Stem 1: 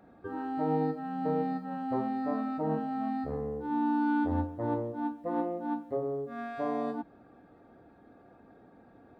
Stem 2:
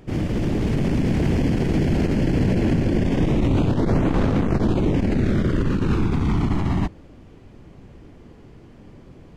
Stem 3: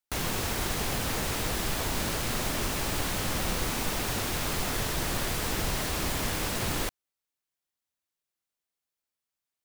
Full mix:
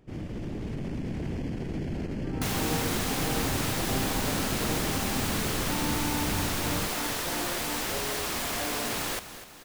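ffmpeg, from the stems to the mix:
-filter_complex "[0:a]adelay=2000,volume=0.501[s0];[1:a]volume=0.224[s1];[2:a]lowshelf=f=210:g=-12,adelay=2300,volume=1.06,asplit=2[s2][s3];[s3]volume=0.224,aecho=0:1:248|496|744|992|1240|1488|1736|1984:1|0.52|0.27|0.141|0.0731|0.038|0.0198|0.0103[s4];[s0][s1][s2][s4]amix=inputs=4:normalize=0"

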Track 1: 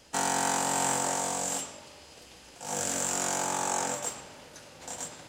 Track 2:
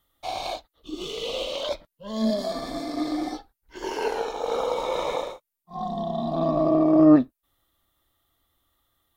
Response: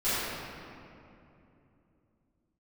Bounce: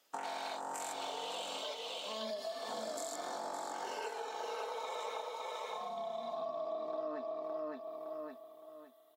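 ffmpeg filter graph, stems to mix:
-filter_complex "[0:a]afwtdn=0.0224,highpass=380,acompressor=threshold=0.0224:ratio=6,volume=1.06,asplit=2[s0][s1];[s1]volume=0.316[s2];[1:a]highpass=630,aecho=1:1:4.6:0.7,volume=0.531,asplit=2[s3][s4];[s4]volume=0.668[s5];[s2][s5]amix=inputs=2:normalize=0,aecho=0:1:563|1126|1689|2252:1|0.28|0.0784|0.022[s6];[s0][s3][s6]amix=inputs=3:normalize=0,acompressor=threshold=0.0112:ratio=4"

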